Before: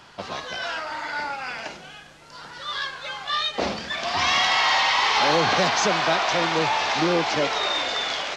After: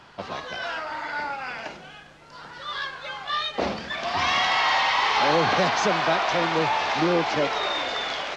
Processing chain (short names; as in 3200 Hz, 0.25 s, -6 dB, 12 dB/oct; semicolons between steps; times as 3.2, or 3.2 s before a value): high shelf 4500 Hz -10 dB